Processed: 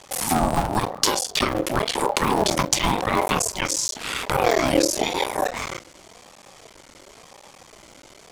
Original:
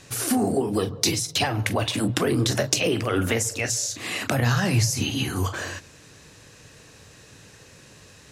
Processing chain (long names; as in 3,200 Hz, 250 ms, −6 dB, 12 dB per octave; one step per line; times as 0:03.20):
sub-harmonics by changed cycles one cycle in 3, muted
ring modulator whose carrier an LFO sweeps 560 Hz, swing 25%, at 0.94 Hz
level +6 dB